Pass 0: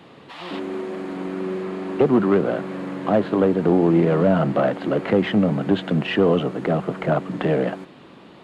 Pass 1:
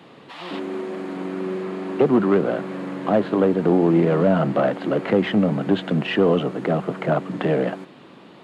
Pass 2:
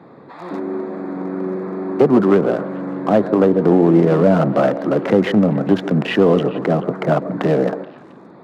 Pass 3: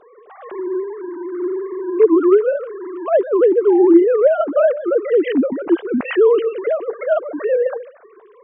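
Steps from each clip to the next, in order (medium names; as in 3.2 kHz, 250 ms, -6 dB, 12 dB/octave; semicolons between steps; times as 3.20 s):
high-pass 110 Hz
local Wiener filter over 15 samples; repeats whose band climbs or falls 143 ms, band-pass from 440 Hz, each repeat 1.4 oct, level -10 dB; trim +4.5 dB
formants replaced by sine waves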